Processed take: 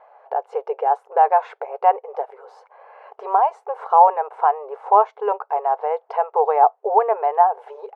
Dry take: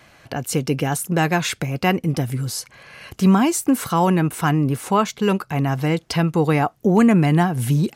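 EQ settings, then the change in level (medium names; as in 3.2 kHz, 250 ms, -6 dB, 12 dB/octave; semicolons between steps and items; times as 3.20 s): brick-wall FIR high-pass 400 Hz; resonant low-pass 850 Hz, resonance Q 4.1; -1.0 dB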